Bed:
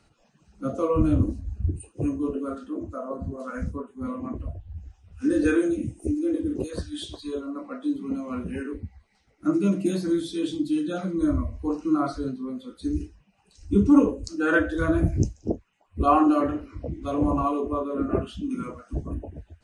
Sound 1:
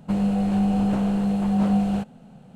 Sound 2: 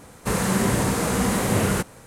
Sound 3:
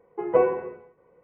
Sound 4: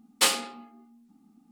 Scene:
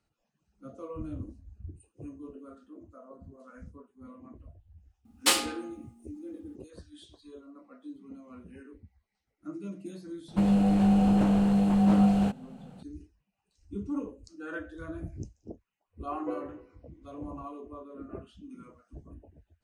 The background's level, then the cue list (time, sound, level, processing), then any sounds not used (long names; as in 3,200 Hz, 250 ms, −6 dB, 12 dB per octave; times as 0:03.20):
bed −17 dB
0:05.05: mix in 4 −1.5 dB
0:10.28: mix in 1 −1 dB
0:15.93: mix in 3 −18 dB
not used: 2